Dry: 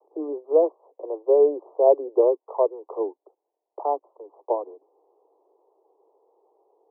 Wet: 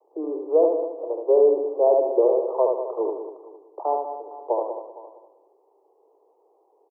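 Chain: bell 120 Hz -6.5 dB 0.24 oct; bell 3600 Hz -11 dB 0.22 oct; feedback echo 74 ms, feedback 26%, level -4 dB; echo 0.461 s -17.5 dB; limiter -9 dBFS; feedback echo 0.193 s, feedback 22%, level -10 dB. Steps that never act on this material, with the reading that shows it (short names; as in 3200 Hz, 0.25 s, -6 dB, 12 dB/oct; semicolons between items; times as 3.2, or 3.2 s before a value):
bell 120 Hz: input band starts at 270 Hz; bell 3600 Hz: input band ends at 1200 Hz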